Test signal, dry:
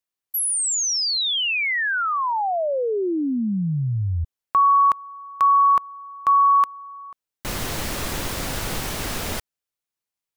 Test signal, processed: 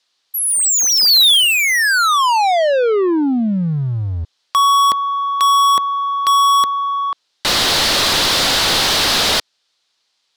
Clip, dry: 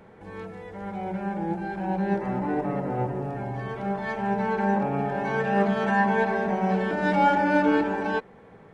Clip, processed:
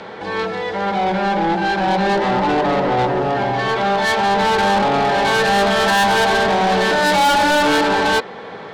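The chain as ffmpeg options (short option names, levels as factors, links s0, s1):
-filter_complex "[0:a]acrossover=split=430|2000[s0][s1][s2];[s0]acompressor=threshold=0.0708:ratio=4:attack=0.21:release=57:knee=2.83:detection=peak[s3];[s3][s1][s2]amix=inputs=3:normalize=0,lowpass=f=4700:t=q:w=1.7,asplit=2[s4][s5];[s5]asoftclip=type=tanh:threshold=0.0944,volume=0.473[s6];[s4][s6]amix=inputs=2:normalize=0,asplit=2[s7][s8];[s8]highpass=f=720:p=1,volume=17.8,asoftclip=type=tanh:threshold=0.376[s9];[s7][s9]amix=inputs=2:normalize=0,lowpass=f=2600:p=1,volume=0.501,aexciter=amount=2.4:drive=6:freq=3300"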